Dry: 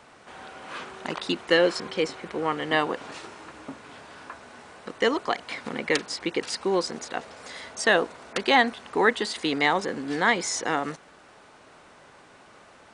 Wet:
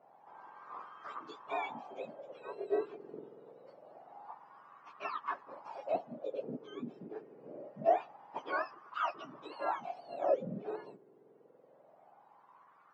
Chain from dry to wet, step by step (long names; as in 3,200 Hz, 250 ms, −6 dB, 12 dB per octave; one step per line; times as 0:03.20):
frequency axis turned over on the octave scale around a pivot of 1,100 Hz
soft clipping −11 dBFS, distortion −24 dB
LFO wah 0.25 Hz 400–1,200 Hz, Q 5.3
level +1 dB